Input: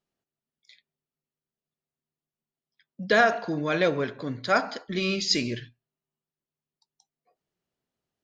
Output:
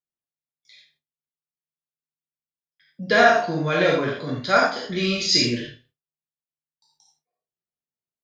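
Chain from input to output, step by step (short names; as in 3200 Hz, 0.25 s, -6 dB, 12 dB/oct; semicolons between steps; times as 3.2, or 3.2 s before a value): spectral trails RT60 0.32 s; non-linear reverb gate 0.11 s flat, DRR -2 dB; gate with hold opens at -55 dBFS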